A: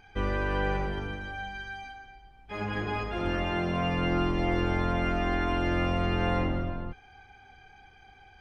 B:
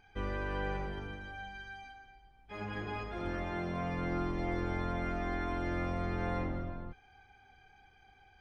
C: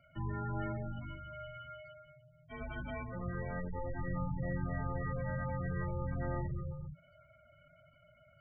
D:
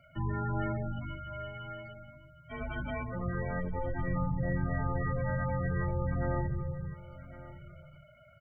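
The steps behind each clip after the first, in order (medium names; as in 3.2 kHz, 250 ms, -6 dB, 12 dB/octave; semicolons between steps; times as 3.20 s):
band-stop 2.8 kHz, Q 22; trim -7.5 dB
frequency shift -170 Hz; spectral gate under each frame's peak -15 dB strong; trim -1.5 dB
delay 1110 ms -16.5 dB; trim +5 dB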